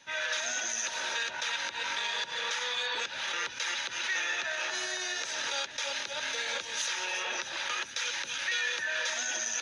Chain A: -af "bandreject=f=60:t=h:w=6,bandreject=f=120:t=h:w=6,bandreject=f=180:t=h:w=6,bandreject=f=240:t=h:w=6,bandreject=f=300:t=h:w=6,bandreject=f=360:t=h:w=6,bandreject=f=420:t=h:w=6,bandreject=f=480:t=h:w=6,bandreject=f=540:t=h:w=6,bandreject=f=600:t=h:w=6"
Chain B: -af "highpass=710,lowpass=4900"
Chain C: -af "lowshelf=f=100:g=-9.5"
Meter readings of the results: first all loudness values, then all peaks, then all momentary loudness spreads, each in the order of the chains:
-31.5 LUFS, -32.5 LUFS, -31.5 LUFS; -19.5 dBFS, -20.5 dBFS, -19.5 dBFS; 3 LU, 3 LU, 3 LU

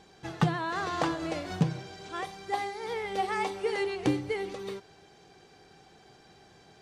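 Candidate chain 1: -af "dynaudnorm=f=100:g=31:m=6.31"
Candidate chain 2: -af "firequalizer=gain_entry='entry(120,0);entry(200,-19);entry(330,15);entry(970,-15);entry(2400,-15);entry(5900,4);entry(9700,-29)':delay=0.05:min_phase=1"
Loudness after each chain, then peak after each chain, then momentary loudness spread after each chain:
-21.5 LUFS, -25.0 LUFS; -2.0 dBFS, -7.0 dBFS; 12 LU, 12 LU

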